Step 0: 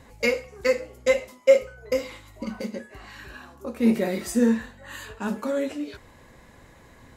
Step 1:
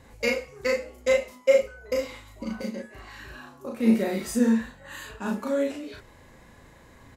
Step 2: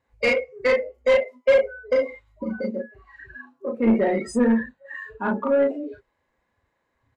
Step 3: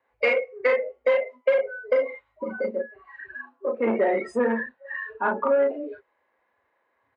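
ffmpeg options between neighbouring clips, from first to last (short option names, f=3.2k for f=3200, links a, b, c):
-filter_complex "[0:a]asplit=2[a][b];[b]adelay=36,volume=-2dB[c];[a][c]amix=inputs=2:normalize=0,volume=-3dB"
-filter_complex "[0:a]afftdn=nr=29:nf=-33,asplit=2[a][b];[b]highpass=f=720:p=1,volume=19dB,asoftclip=type=tanh:threshold=-8.5dB[c];[a][c]amix=inputs=2:normalize=0,lowpass=f=1.9k:p=1,volume=-6dB"
-filter_complex "[0:a]highpass=61,acrossover=split=350 3000:gain=0.112 1 0.112[a][b][c];[a][b][c]amix=inputs=3:normalize=0,acompressor=threshold=-21dB:ratio=10,volume=4dB"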